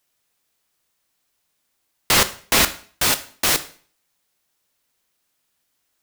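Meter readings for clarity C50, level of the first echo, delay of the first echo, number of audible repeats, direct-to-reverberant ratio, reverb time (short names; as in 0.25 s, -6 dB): 16.0 dB, none, none, none, 11.0 dB, 0.45 s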